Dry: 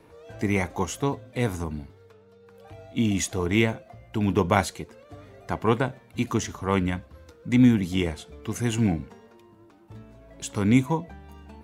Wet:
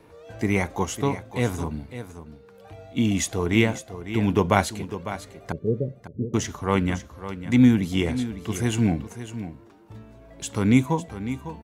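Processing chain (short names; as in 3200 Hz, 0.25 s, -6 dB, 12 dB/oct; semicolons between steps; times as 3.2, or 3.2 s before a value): 5.52–6.34 rippled Chebyshev low-pass 590 Hz, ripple 6 dB; echo 0.552 s -12 dB; gain +1.5 dB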